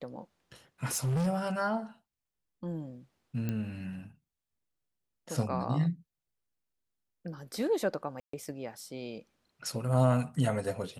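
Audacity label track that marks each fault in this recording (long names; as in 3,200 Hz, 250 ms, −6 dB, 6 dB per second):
0.850000	1.280000	clipping −27 dBFS
3.490000	3.490000	click −21 dBFS
8.200000	8.330000	drop-out 134 ms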